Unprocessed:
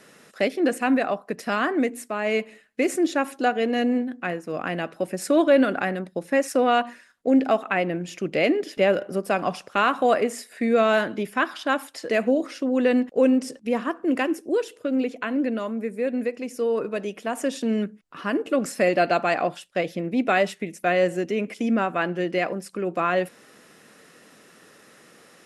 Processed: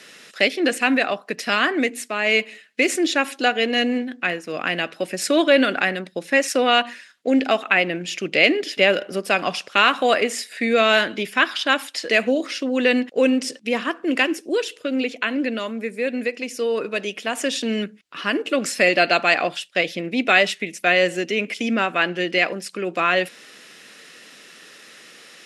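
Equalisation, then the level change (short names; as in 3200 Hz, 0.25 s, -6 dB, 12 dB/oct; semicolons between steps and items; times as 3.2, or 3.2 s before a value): weighting filter D; +1.5 dB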